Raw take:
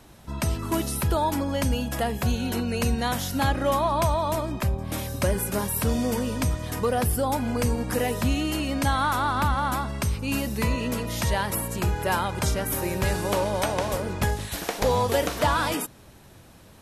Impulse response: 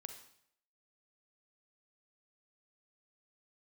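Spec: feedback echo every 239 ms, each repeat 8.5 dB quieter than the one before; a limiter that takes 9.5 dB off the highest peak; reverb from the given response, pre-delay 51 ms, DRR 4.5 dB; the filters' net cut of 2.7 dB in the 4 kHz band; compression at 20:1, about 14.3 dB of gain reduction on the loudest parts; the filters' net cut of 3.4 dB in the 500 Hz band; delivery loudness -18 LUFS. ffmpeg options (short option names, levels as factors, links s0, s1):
-filter_complex "[0:a]equalizer=f=500:t=o:g=-4,equalizer=f=4000:t=o:g=-3.5,acompressor=threshold=0.02:ratio=20,alimiter=level_in=2.11:limit=0.0631:level=0:latency=1,volume=0.473,aecho=1:1:239|478|717|956:0.376|0.143|0.0543|0.0206,asplit=2[s0][s1];[1:a]atrim=start_sample=2205,adelay=51[s2];[s1][s2]afir=irnorm=-1:irlink=0,volume=1[s3];[s0][s3]amix=inputs=2:normalize=0,volume=10"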